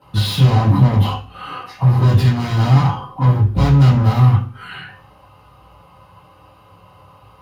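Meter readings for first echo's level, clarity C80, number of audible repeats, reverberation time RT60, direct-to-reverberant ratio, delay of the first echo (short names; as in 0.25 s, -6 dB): none, 13.0 dB, none, 0.45 s, -12.5 dB, none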